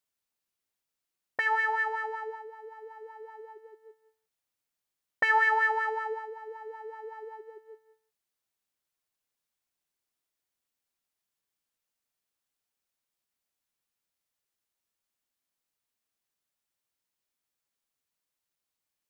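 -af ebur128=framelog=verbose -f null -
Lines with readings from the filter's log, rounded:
Integrated loudness:
  I:         -27.6 LUFS
  Threshold: -41.2 LUFS
Loudness range:
  LRA:        17.9 LU
  Threshold: -52.9 LUFS
  LRA low:   -47.6 LUFS
  LRA high:  -29.8 LUFS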